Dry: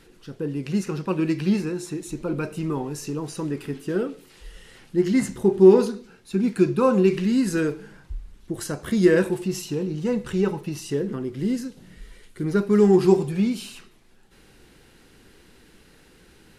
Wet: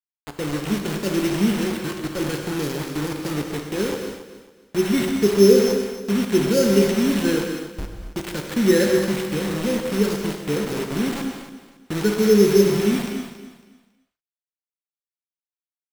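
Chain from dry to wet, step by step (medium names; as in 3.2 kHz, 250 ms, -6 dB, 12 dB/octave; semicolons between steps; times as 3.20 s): sample-and-hold 8×; FFT band-reject 590–1300 Hz; bit crusher 5-bit; on a send: feedback delay 288 ms, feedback 28%, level -13 dB; on the sum: gated-style reverb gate 280 ms flat, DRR 3.5 dB; speed mistake 24 fps film run at 25 fps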